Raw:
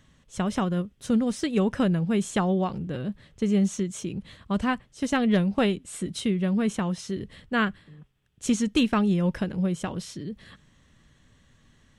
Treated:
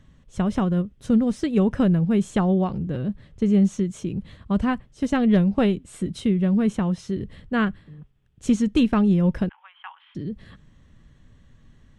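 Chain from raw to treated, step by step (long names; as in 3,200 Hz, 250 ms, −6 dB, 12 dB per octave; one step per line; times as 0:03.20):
0:09.49–0:10.15: Chebyshev band-pass filter 830–3,300 Hz, order 5
spectral tilt −2 dB per octave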